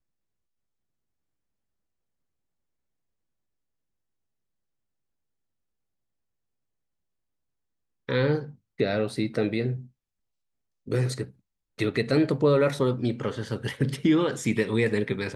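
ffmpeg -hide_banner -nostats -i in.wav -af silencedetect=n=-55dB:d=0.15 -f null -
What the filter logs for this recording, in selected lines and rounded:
silence_start: 0.00
silence_end: 8.08 | silence_duration: 8.08
silence_start: 8.56
silence_end: 8.78 | silence_duration: 0.23
silence_start: 9.90
silence_end: 10.86 | silence_duration: 0.96
silence_start: 11.39
silence_end: 11.78 | silence_duration: 0.39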